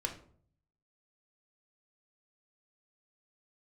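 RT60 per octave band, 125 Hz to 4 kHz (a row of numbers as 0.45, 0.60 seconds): 0.95, 0.70, 0.60, 0.50, 0.35, 0.30 seconds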